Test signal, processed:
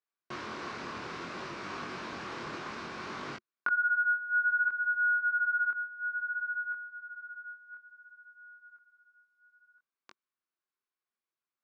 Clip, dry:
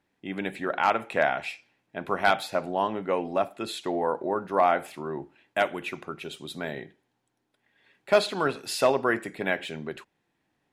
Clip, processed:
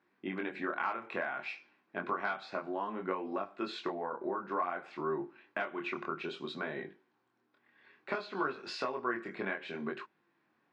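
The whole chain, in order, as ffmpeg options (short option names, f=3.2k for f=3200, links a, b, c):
-af "acompressor=threshold=-33dB:ratio=8,flanger=delay=20:depth=5.9:speed=0.59,highpass=150,equalizer=f=220:t=q:w=4:g=4,equalizer=f=360:t=q:w=4:g=7,equalizer=f=1.1k:t=q:w=4:g=10,equalizer=f=1.5k:t=q:w=4:g=7,equalizer=f=2.3k:t=q:w=4:g=3,equalizer=f=3.3k:t=q:w=4:g=-3,lowpass=f=5.2k:w=0.5412,lowpass=f=5.2k:w=1.3066"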